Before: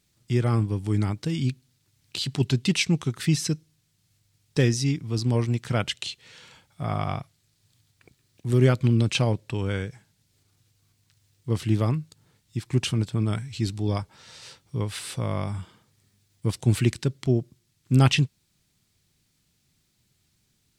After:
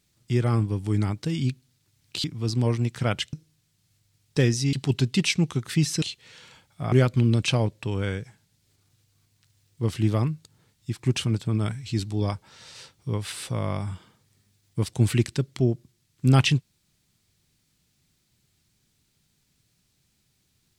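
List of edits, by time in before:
2.24–3.53 swap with 4.93–6.02
6.92–8.59 cut

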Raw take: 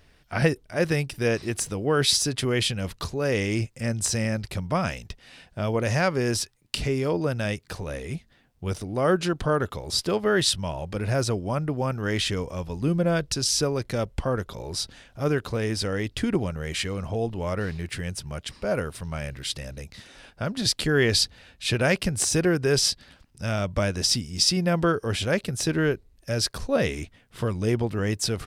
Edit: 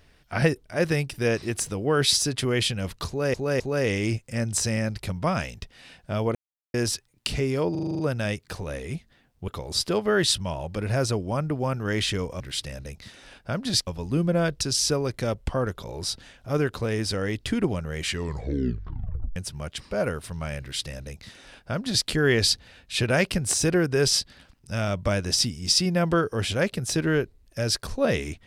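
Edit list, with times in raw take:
3.08–3.34 loop, 3 plays
5.83–6.22 mute
7.19 stutter 0.04 s, 8 plays
8.68–9.66 cut
16.78 tape stop 1.29 s
19.32–20.79 copy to 12.58

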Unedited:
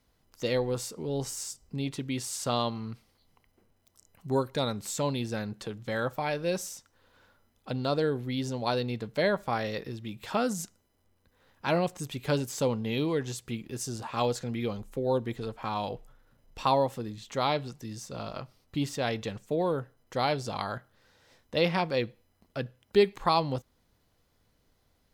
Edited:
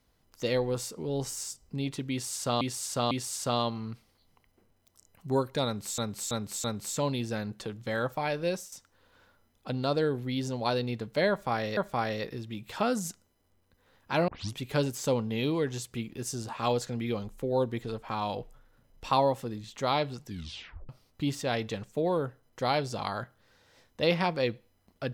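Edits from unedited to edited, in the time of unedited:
2.11–2.61 loop, 3 plays
4.65–4.98 loop, 4 plays
6.48–6.73 fade out, to -12.5 dB
9.31–9.78 loop, 2 plays
11.82 tape start 0.28 s
17.8 tape stop 0.63 s

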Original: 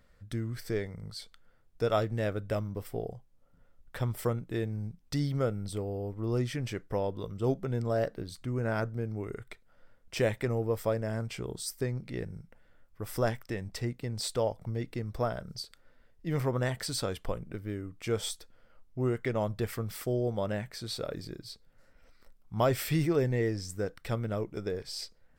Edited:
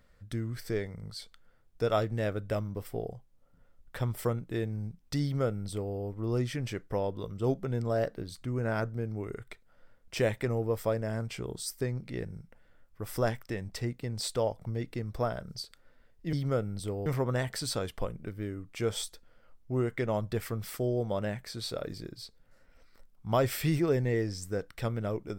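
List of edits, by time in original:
5.22–5.95 copy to 16.33

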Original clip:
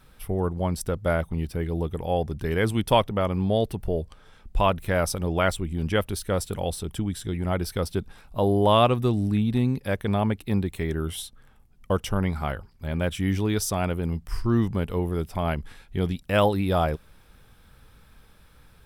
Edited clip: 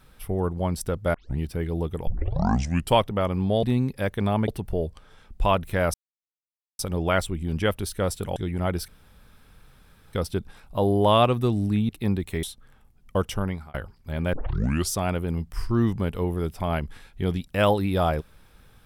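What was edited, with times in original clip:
1.14 tape start 0.25 s
2.07 tape start 0.89 s
5.09 insert silence 0.85 s
6.66–7.22 cut
7.74 insert room tone 1.25 s
9.5–10.35 move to 3.63
10.89–11.18 cut
11.94–12.49 fade out equal-power
13.08 tape start 0.58 s

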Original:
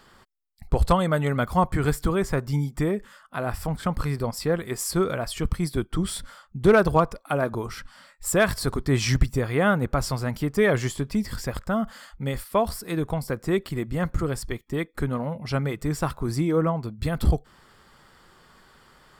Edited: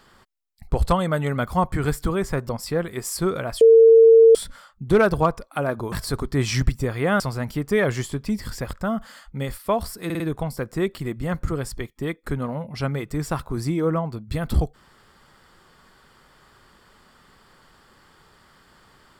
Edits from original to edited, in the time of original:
2.49–4.23 cut
5.35–6.09 bleep 453 Hz -7.5 dBFS
7.66–8.46 cut
9.74–10.06 cut
12.91 stutter 0.05 s, 4 plays

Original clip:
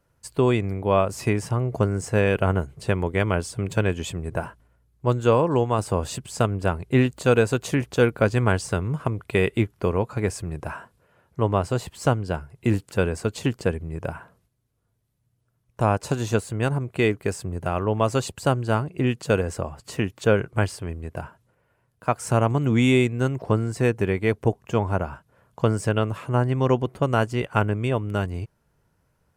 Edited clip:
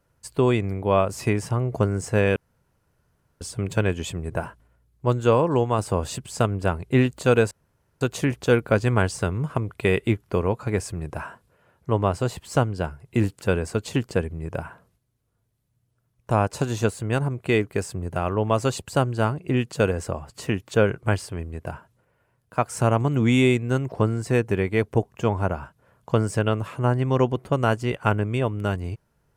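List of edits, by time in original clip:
2.36–3.41 room tone
7.51 insert room tone 0.50 s

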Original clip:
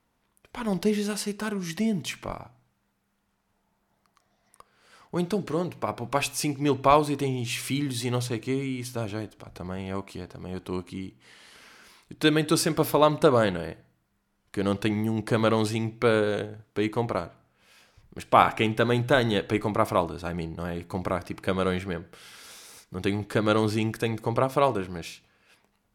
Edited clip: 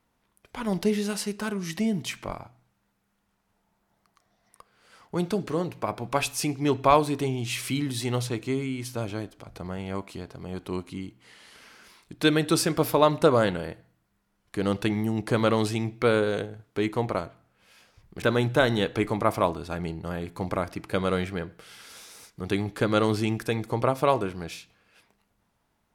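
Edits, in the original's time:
18.22–18.76 cut

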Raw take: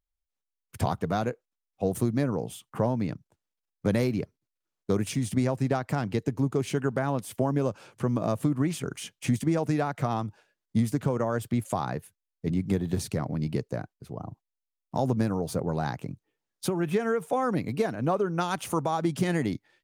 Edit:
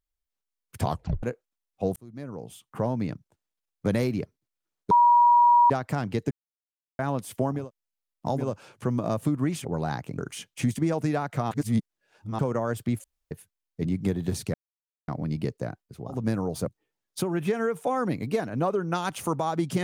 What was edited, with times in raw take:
0.89 tape stop 0.34 s
1.96–3 fade in
4.91–5.7 bleep 959 Hz -14 dBFS
6.31–6.99 mute
10.16–11.04 reverse
11.69–11.96 room tone
13.19 insert silence 0.54 s
14.28–15.1 move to 7.59, crossfade 0.24 s
15.6–16.13 move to 8.83

